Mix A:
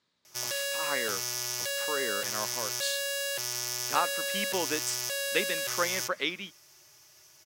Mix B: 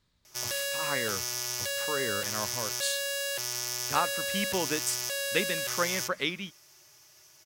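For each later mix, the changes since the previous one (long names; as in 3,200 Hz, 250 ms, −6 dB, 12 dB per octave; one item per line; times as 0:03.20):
speech: remove band-pass filter 260–7,400 Hz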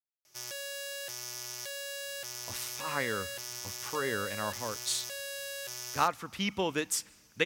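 speech: entry +2.05 s
background −7.5 dB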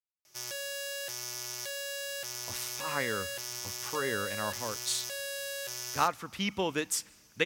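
background: send +10.5 dB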